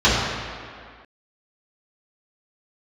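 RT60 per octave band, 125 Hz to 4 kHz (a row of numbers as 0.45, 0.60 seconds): 1.6, 1.9, 1.9, 2.2, 2.1, 1.6 seconds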